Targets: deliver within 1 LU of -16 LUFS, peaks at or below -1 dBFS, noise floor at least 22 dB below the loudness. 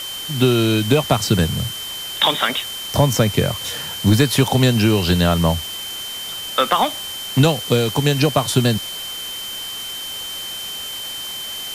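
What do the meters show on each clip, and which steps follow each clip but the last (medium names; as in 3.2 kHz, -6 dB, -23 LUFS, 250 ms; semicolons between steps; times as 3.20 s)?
steady tone 3.1 kHz; tone level -28 dBFS; noise floor -29 dBFS; noise floor target -41 dBFS; loudness -19.0 LUFS; peak level -3.0 dBFS; loudness target -16.0 LUFS
-> band-stop 3.1 kHz, Q 30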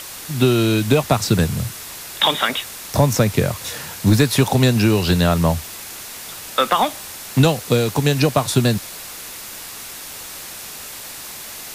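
steady tone not found; noise floor -34 dBFS; noise floor target -40 dBFS
-> noise reduction 6 dB, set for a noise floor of -34 dBFS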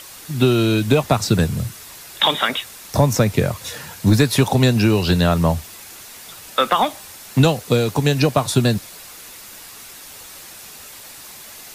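noise floor -39 dBFS; noise floor target -41 dBFS
-> noise reduction 6 dB, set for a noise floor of -39 dBFS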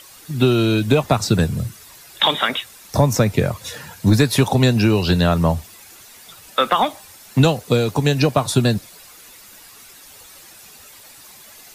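noise floor -44 dBFS; loudness -18.0 LUFS; peak level -3.5 dBFS; loudness target -16.0 LUFS
-> trim +2 dB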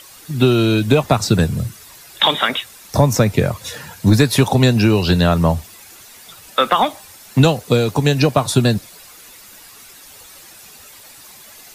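loudness -16.0 LUFS; peak level -1.5 dBFS; noise floor -42 dBFS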